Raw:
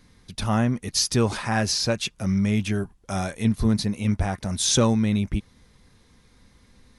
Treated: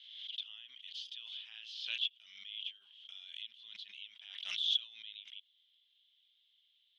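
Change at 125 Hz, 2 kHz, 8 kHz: below −40 dB, −15.5 dB, −35.0 dB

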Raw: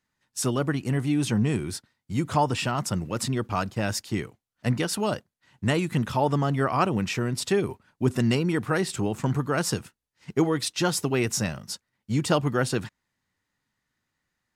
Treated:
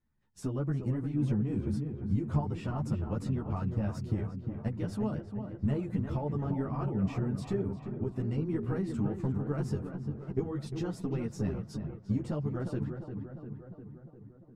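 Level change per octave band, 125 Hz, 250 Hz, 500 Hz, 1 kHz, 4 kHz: −4.0 dB, −5.5 dB, −10.0 dB, −15.0 dB, below −20 dB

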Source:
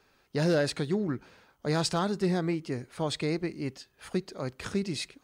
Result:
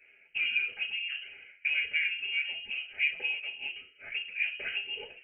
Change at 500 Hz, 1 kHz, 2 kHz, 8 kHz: −24.0 dB, below −20 dB, +10.5 dB, below −40 dB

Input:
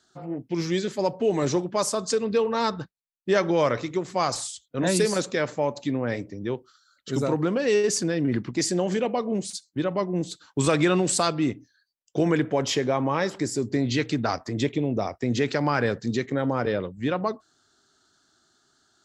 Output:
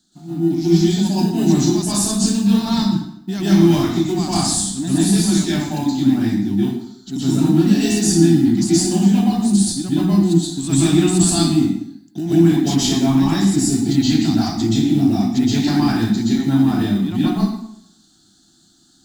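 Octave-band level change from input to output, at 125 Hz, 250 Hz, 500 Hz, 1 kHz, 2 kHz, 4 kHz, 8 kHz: +11.5, +13.0, 0.0, +1.0, −0.5, +9.0, +10.0 decibels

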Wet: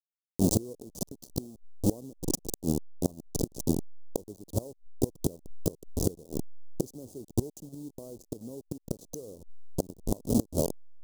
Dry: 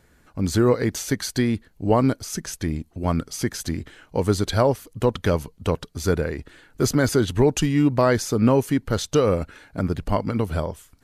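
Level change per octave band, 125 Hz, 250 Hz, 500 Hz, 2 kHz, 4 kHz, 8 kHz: −11.0 dB, −9.5 dB, −13.5 dB, below −35 dB, −14.0 dB, −6.0 dB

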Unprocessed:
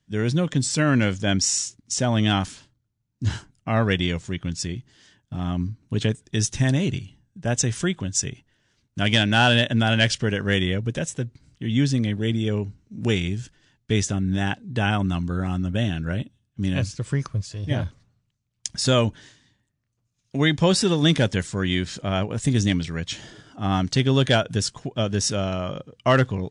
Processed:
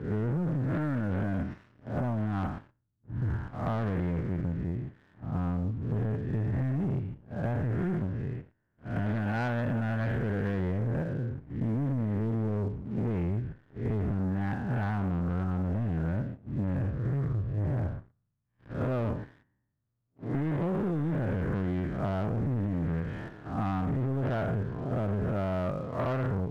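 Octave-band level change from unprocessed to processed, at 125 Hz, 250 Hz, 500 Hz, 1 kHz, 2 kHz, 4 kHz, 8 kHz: −5.5 dB, −7.0 dB, −8.5 dB, −8.5 dB, −14.5 dB, below −25 dB, below −35 dB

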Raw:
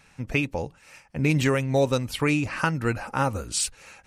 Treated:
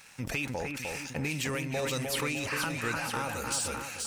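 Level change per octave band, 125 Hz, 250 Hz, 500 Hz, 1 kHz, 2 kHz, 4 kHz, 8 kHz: −10.5, −9.5, −9.0, −6.0, −3.5, −2.0, −2.5 decibels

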